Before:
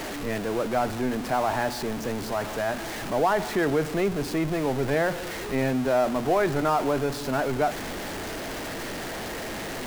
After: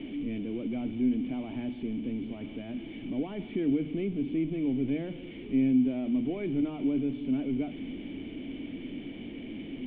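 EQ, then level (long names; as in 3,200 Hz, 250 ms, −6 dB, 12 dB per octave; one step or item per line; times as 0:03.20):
formant resonators in series i
mains-hum notches 50/100/150 Hz
+4.5 dB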